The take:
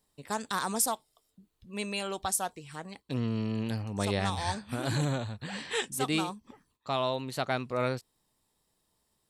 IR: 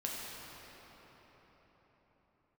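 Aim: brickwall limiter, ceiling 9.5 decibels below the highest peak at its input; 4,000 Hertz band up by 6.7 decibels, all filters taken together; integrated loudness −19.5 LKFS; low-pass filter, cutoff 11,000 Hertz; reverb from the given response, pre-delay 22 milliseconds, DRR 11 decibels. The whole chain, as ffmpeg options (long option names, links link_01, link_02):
-filter_complex "[0:a]lowpass=11000,equalizer=frequency=4000:width_type=o:gain=8,alimiter=limit=-21dB:level=0:latency=1,asplit=2[link_01][link_02];[1:a]atrim=start_sample=2205,adelay=22[link_03];[link_02][link_03]afir=irnorm=-1:irlink=0,volume=-14dB[link_04];[link_01][link_04]amix=inputs=2:normalize=0,volume=14dB"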